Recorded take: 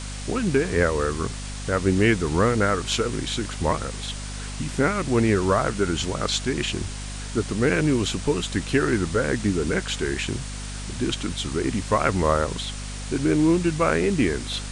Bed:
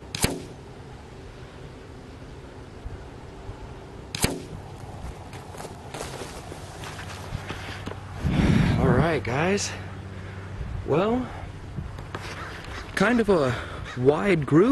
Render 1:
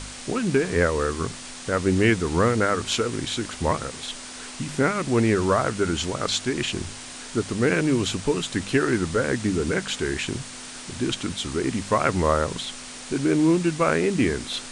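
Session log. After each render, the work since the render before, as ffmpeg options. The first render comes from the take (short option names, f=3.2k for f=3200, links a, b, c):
-af "bandreject=f=50:t=h:w=4,bandreject=f=100:t=h:w=4,bandreject=f=150:t=h:w=4,bandreject=f=200:t=h:w=4"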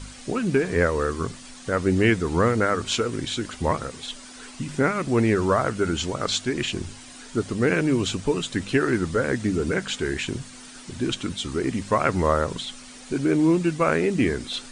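-af "afftdn=nr=9:nf=-39"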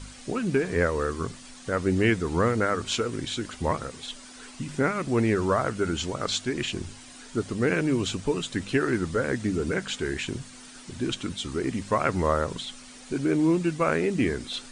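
-af "volume=-3dB"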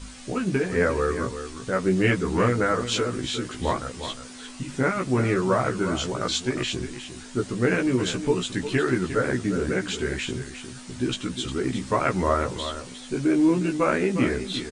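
-filter_complex "[0:a]asplit=2[a][b];[b]adelay=16,volume=-3dB[c];[a][c]amix=inputs=2:normalize=0,asplit=2[d][e];[e]aecho=0:1:356:0.299[f];[d][f]amix=inputs=2:normalize=0"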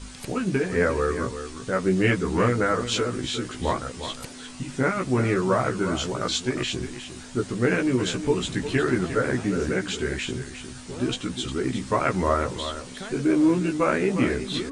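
-filter_complex "[1:a]volume=-17dB[a];[0:a][a]amix=inputs=2:normalize=0"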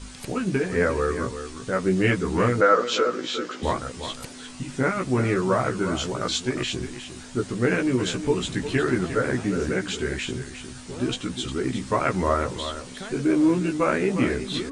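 -filter_complex "[0:a]asettb=1/sr,asplit=3[a][b][c];[a]atrim=end=2.614[d];[b]atrim=start=2.61:end=3.63,asetpts=PTS-STARTPTS,afade=t=in:d=0.004:c=qsin,afade=t=out:st=1.016:d=0.004:c=qsin,highpass=f=210:w=0.5412,highpass=f=210:w=1.3066,equalizer=f=230:t=q:w=4:g=-4,equalizer=f=520:t=q:w=4:g=9,equalizer=f=1.3k:t=q:w=4:g=8,lowpass=f=6.7k:w=0.5412,lowpass=f=6.7k:w=1.3066[e];[c]atrim=start=3.626[f];[d][e]acrossfade=d=0.004:c1=hsin:c2=qsin[g];[g][f]acrossfade=d=0.004:c1=qsin:c2=hsin"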